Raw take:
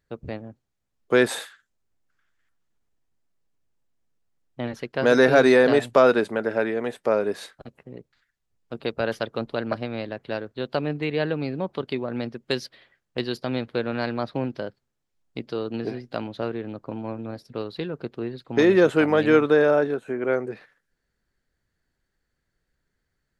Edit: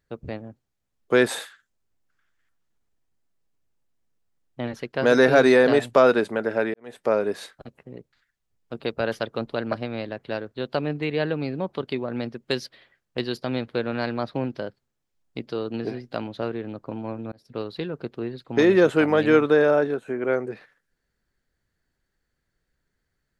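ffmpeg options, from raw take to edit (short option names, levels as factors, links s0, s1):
-filter_complex "[0:a]asplit=3[s0][s1][s2];[s0]atrim=end=6.74,asetpts=PTS-STARTPTS,afade=t=out:st=6.736:d=0.004:c=hsin[s3];[s1]atrim=start=6.74:end=17.32,asetpts=PTS-STARTPTS,afade=t=in:d=0.26:c=qua,afade=t=out:st=10.576:d=0.004:c=hsin[s4];[s2]atrim=start=17.32,asetpts=PTS-STARTPTS,afade=t=in:d=0.25[s5];[s3][s4][s5]concat=n=3:v=0:a=1"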